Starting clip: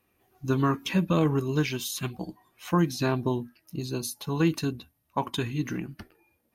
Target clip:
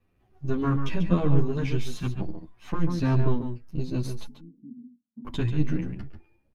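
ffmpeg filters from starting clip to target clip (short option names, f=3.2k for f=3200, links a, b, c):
-filter_complex "[0:a]aeval=exprs='if(lt(val(0),0),0.447*val(0),val(0))':c=same,aemphasis=mode=reproduction:type=bsi,alimiter=limit=-11.5dB:level=0:latency=1:release=69,asettb=1/sr,asplit=3[a][b][c];[a]atrim=end=4.264[d];[b]atrim=start=4.26:end=5.25,asetpts=PTS-STARTPTS,afade=t=in:d=0.004:c=qsin,afade=t=out:st=0.986:d=0.004:c=qsin,asuperpass=centerf=230:order=4:qfactor=6.1[e];[c]atrim=start=5.246[f];[d][e]acrossfade=d=0.004:c1=hsin:c2=qsin[g];[g][f]acrossfade=d=0.004:c1=qsin:c2=hsin,asplit=2[h][i];[i]adelay=139.9,volume=-8dB,highshelf=f=4k:g=-3.15[j];[h][j]amix=inputs=2:normalize=0,asplit=2[k][l];[l]adelay=10,afreqshift=2.1[m];[k][m]amix=inputs=2:normalize=1,volume=2dB"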